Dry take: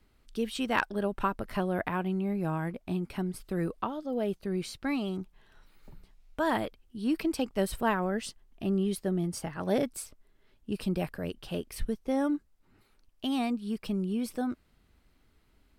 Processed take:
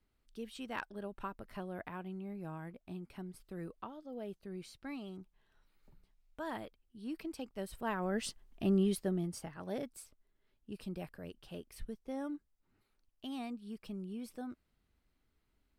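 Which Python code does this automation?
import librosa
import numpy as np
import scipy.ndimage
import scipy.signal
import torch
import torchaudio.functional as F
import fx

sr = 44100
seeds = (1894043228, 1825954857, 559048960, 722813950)

y = fx.gain(x, sr, db=fx.line((7.73, -13.0), (8.26, -1.0), (8.83, -1.0), (9.69, -12.0)))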